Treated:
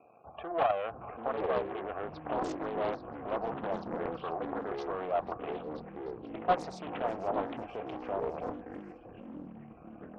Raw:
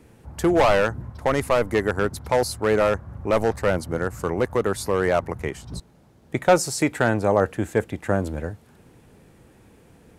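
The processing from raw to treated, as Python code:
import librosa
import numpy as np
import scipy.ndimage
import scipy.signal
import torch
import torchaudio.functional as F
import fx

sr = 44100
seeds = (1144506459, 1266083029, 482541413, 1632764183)

p1 = fx.high_shelf(x, sr, hz=3800.0, db=-9.5)
p2 = fx.over_compress(p1, sr, threshold_db=-27.0, ratio=-0.5)
p3 = p1 + (p2 * librosa.db_to_amplitude(-3.0))
p4 = fx.leveller(p3, sr, passes=2)
p5 = fx.level_steps(p4, sr, step_db=11)
p6 = np.clip(p5, -10.0 ** (-15.0 / 20.0), 10.0 ** (-15.0 / 20.0))
p7 = fx.vowel_filter(p6, sr, vowel='a')
p8 = fx.spec_topn(p7, sr, count=64)
p9 = fx.echo_wet_highpass(p8, sr, ms=489, feedback_pct=36, hz=4100.0, wet_db=-13.5)
p10 = fx.echo_pitch(p9, sr, ms=517, semitones=-7, count=3, db_per_echo=-6.0)
p11 = p10 + fx.echo_stepped(p10, sr, ms=426, hz=1300.0, octaves=0.7, feedback_pct=70, wet_db=-12.0, dry=0)
y = fx.doppler_dist(p11, sr, depth_ms=0.59)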